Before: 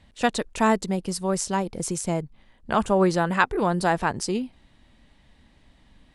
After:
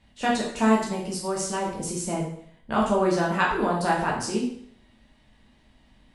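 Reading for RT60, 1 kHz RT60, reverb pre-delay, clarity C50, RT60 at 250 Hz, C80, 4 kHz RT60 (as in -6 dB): 0.60 s, 0.60 s, 5 ms, 4.0 dB, 0.60 s, 7.5 dB, 0.60 s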